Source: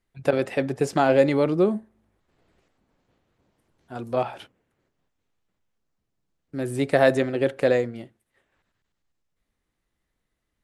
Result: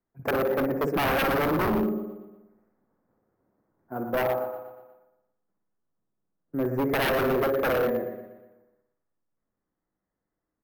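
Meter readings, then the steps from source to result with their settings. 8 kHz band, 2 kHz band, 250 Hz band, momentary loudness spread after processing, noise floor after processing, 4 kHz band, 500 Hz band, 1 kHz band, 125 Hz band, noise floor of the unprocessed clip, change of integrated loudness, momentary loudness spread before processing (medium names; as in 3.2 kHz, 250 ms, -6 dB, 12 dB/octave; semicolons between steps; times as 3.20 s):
-2.5 dB, +0.5 dB, -2.0 dB, 15 LU, -85 dBFS, +1.5 dB, -3.5 dB, +0.5 dB, -3.5 dB, -79 dBFS, -3.0 dB, 14 LU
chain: Butterworth band-stop 3.3 kHz, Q 0.6; three-band isolator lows -14 dB, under 150 Hz, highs -17 dB, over 4 kHz; spring tank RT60 1 s, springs 55 ms, chirp 30 ms, DRR 6 dB; gate -46 dBFS, range -6 dB; in parallel at -4 dB: saturation -25.5 dBFS, distortion -5 dB; on the sum: bass shelf 160 Hz +4.5 dB; feedback delay 120 ms, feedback 51%, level -10 dB; wavefolder -17.5 dBFS; careless resampling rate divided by 3×, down filtered, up hold; trim -2 dB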